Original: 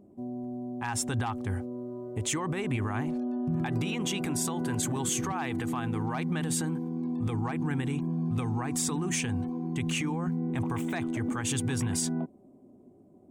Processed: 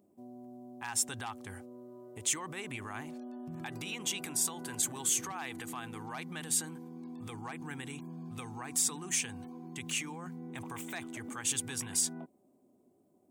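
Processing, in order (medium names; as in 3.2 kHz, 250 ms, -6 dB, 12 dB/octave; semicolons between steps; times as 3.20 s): tilt EQ +3 dB/octave; trim -7 dB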